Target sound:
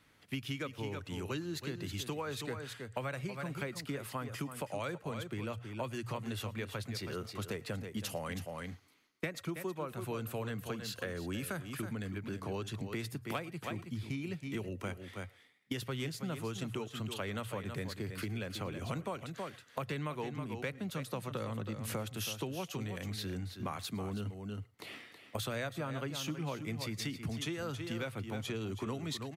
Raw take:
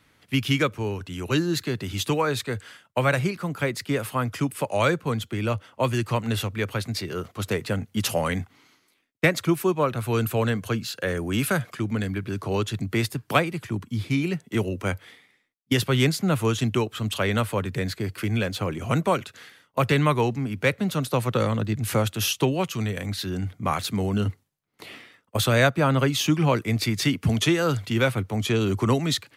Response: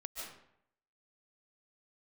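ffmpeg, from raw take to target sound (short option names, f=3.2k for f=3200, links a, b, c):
-filter_complex "[0:a]bandreject=f=60:t=h:w=6,bandreject=f=120:t=h:w=6,aecho=1:1:322:0.299,acompressor=threshold=-31dB:ratio=5[a];[1:a]atrim=start_sample=2205,afade=t=out:st=0.16:d=0.01,atrim=end_sample=7497[b];[a][b]afir=irnorm=-1:irlink=0"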